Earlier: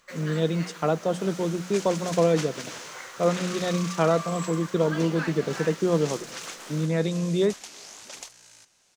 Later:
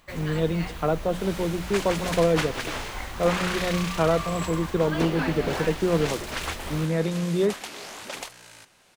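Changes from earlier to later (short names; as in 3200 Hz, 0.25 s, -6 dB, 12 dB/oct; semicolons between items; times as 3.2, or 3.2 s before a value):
first sound: remove rippled Chebyshev high-pass 360 Hz, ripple 9 dB; second sound +10.5 dB; master: add bell 6300 Hz -12.5 dB 1.1 oct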